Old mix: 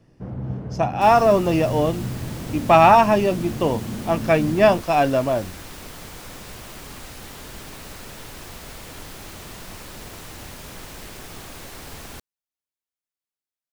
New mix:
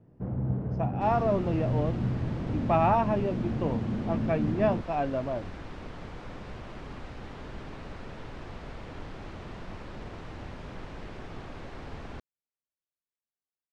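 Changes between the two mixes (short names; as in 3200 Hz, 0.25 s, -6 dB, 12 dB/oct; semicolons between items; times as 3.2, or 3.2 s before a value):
speech -9.0 dB; master: add tape spacing loss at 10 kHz 33 dB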